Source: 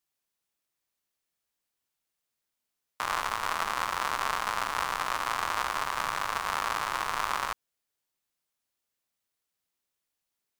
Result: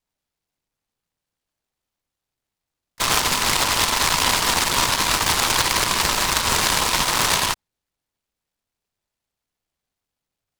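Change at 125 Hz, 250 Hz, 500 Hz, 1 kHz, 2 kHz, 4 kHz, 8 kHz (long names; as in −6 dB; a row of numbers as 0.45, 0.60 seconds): +19.0, +17.5, +11.5, +6.5, +10.0, +18.0, +20.5 decibels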